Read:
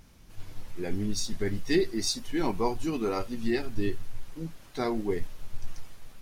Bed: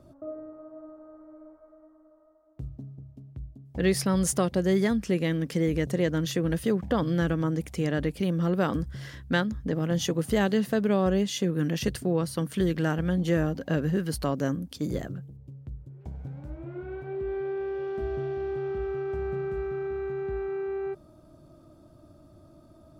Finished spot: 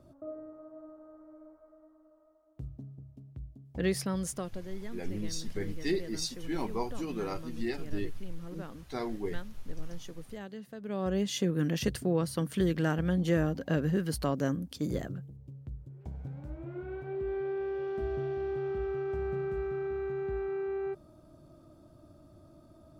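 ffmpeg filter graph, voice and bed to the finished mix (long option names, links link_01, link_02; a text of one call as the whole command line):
ffmpeg -i stem1.wav -i stem2.wav -filter_complex "[0:a]adelay=4150,volume=-6dB[link_01];[1:a]volume=12.5dB,afade=type=out:start_time=3.7:duration=0.96:silence=0.177828,afade=type=in:start_time=10.8:duration=0.54:silence=0.149624[link_02];[link_01][link_02]amix=inputs=2:normalize=0" out.wav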